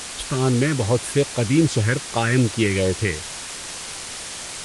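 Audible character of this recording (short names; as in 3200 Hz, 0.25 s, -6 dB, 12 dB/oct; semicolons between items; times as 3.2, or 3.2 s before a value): phasing stages 4, 2.5 Hz, lowest notch 700–2600 Hz; a quantiser's noise floor 6-bit, dither triangular; Vorbis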